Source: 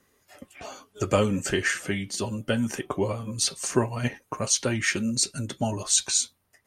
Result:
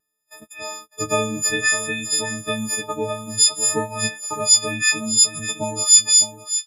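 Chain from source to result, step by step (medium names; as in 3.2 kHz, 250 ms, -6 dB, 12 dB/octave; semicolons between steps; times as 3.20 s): partials quantised in pitch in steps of 6 st; gate -42 dBFS, range -25 dB; in parallel at -0.5 dB: compression, threshold -27 dBFS, peak gain reduction 20.5 dB; on the sum: bass shelf 79 Hz -7.5 dB; on a send: delay 606 ms -11.5 dB; on the sum: vibrato 0.61 Hz 11 cents; trim -3.5 dB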